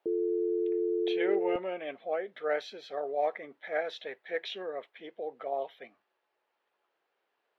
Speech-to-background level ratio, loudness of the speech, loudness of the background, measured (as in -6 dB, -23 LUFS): -4.5 dB, -35.5 LUFS, -31.0 LUFS